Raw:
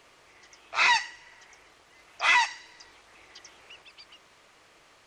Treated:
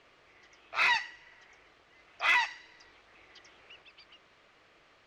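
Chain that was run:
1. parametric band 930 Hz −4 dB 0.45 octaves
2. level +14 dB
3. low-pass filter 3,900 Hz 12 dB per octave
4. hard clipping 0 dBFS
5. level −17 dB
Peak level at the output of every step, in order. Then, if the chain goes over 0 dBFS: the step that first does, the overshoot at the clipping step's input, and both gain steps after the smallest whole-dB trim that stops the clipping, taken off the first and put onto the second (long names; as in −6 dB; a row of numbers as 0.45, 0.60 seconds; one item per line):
−10.0, +4.0, +3.5, 0.0, −17.0 dBFS
step 2, 3.5 dB
step 2 +10 dB, step 5 −13 dB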